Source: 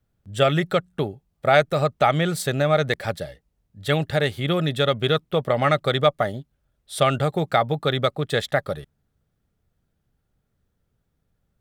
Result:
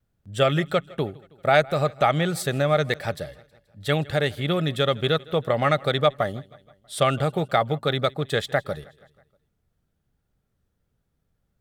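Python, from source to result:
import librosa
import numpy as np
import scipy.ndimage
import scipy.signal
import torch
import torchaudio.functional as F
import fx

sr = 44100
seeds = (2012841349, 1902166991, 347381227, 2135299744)

p1 = fx.vibrato(x, sr, rate_hz=1.4, depth_cents=29.0)
p2 = p1 + fx.echo_feedback(p1, sr, ms=160, feedback_pct=57, wet_db=-23, dry=0)
y = F.gain(torch.from_numpy(p2), -1.5).numpy()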